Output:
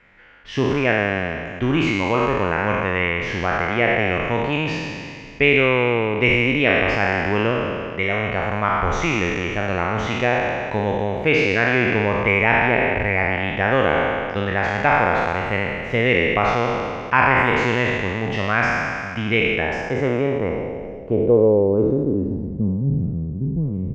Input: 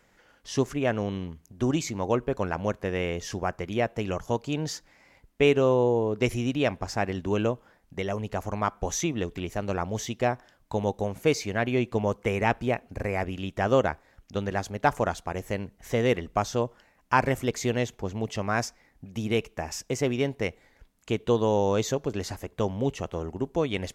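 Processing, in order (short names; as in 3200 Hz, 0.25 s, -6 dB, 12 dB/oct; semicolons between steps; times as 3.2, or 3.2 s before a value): spectral trails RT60 2.18 s; bell 610 Hz -3.5 dB 2.5 oct; in parallel at -2 dB: limiter -15 dBFS, peak gain reduction 8.5 dB; on the sum: low-pass sweep 2300 Hz -> 170 Hz, 19.49–22.85; feedback echo 0.373 s, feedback 43%, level -23 dB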